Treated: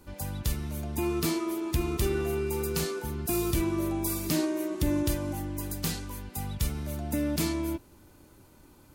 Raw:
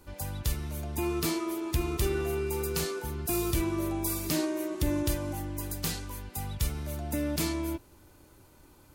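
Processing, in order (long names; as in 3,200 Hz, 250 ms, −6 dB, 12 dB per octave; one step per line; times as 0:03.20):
parametric band 210 Hz +5 dB 1 octave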